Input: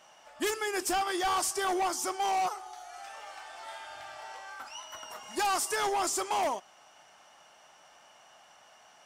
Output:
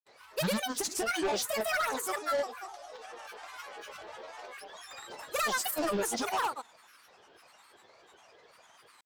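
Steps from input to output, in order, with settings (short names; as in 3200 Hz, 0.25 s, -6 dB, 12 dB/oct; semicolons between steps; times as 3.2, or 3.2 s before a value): grains, pitch spread up and down by 12 st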